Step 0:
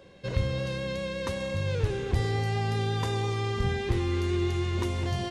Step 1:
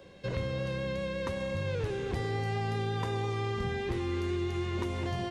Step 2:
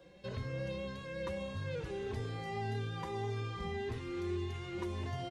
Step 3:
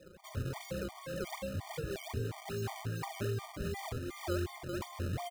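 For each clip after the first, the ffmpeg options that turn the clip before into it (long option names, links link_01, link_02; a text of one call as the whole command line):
ffmpeg -i in.wav -filter_complex "[0:a]acrossover=split=140|2800[link_01][link_02][link_03];[link_01]acompressor=threshold=-38dB:ratio=4[link_04];[link_02]acompressor=threshold=-31dB:ratio=4[link_05];[link_03]acompressor=threshold=-52dB:ratio=4[link_06];[link_04][link_05][link_06]amix=inputs=3:normalize=0" out.wav
ffmpeg -i in.wav -filter_complex "[0:a]asplit=2[link_01][link_02];[link_02]adelay=3.8,afreqshift=1.7[link_03];[link_01][link_03]amix=inputs=2:normalize=1,volume=-3.5dB" out.wav
ffmpeg -i in.wav -af "acrusher=samples=28:mix=1:aa=0.000001:lfo=1:lforange=44.8:lforate=2.6,afftfilt=real='re*gt(sin(2*PI*2.8*pts/sr)*(1-2*mod(floor(b*sr/1024/610),2)),0)':imag='im*gt(sin(2*PI*2.8*pts/sr)*(1-2*mod(floor(b*sr/1024/610),2)),0)':win_size=1024:overlap=0.75,volume=3.5dB" out.wav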